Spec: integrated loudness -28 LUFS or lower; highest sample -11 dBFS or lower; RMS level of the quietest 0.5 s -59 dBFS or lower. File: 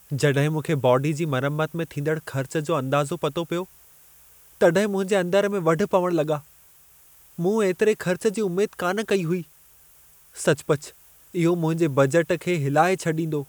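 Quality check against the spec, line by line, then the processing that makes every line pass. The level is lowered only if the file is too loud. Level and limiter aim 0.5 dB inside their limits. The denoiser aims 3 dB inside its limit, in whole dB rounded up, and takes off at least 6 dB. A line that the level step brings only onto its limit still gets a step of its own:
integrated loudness -23.5 LUFS: fail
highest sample -6.5 dBFS: fail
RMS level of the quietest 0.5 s -53 dBFS: fail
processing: denoiser 6 dB, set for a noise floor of -53 dBFS; gain -5 dB

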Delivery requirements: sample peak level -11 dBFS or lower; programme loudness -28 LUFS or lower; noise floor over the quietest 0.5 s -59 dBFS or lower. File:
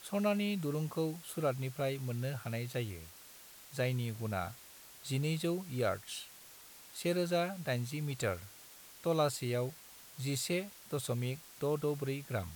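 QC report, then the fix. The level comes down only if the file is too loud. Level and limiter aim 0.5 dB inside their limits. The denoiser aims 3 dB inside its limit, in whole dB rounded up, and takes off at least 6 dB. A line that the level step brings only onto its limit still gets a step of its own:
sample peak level -19.0 dBFS: OK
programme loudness -36.5 LUFS: OK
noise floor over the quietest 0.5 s -55 dBFS: fail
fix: denoiser 7 dB, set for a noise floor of -55 dBFS

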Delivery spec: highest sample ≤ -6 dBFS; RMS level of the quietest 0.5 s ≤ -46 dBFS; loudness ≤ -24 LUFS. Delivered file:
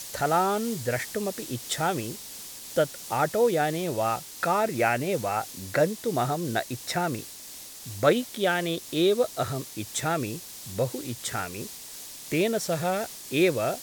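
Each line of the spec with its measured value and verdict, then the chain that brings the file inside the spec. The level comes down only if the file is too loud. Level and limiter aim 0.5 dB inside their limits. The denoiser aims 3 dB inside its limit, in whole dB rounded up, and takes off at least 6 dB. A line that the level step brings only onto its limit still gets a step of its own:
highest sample -8.0 dBFS: OK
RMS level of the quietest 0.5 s -43 dBFS: fail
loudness -27.5 LUFS: OK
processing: denoiser 6 dB, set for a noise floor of -43 dBFS

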